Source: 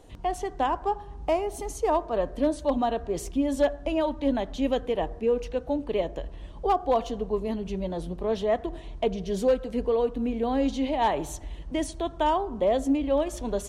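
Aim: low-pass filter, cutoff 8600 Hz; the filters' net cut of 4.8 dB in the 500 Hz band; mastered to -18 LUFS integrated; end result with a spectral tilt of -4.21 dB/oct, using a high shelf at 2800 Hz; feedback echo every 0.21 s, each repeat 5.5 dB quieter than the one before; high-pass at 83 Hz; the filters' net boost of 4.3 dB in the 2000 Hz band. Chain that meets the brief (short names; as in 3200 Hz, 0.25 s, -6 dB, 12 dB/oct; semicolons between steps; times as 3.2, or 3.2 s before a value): HPF 83 Hz; LPF 8600 Hz; bell 500 Hz -6 dB; bell 2000 Hz +8.5 dB; high shelf 2800 Hz -7.5 dB; feedback echo 0.21 s, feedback 53%, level -5.5 dB; gain +11 dB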